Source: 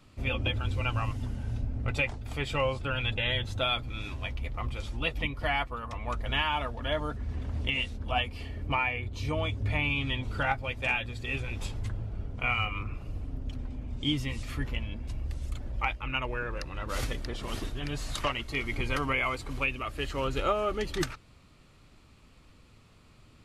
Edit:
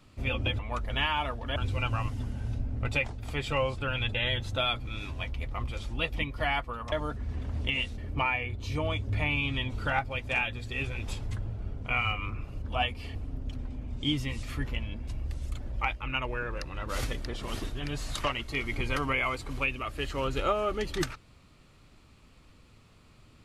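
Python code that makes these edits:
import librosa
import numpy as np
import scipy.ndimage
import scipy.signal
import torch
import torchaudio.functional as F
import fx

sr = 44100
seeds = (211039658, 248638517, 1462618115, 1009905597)

y = fx.edit(x, sr, fx.move(start_s=5.95, length_s=0.97, to_s=0.59),
    fx.move(start_s=7.98, length_s=0.53, to_s=13.15), tone=tone)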